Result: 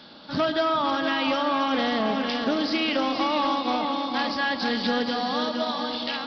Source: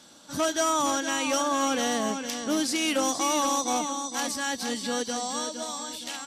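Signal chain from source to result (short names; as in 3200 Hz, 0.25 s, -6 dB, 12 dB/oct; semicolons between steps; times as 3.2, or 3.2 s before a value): compressor, threshold -28 dBFS, peak gain reduction 6.5 dB; echo with dull and thin repeats by turns 0.136 s, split 1200 Hz, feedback 84%, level -10 dB; on a send at -13.5 dB: reverb RT60 0.85 s, pre-delay 5 ms; on the sum: downsampling 11025 Hz; Doppler distortion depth 0.1 ms; gain +7 dB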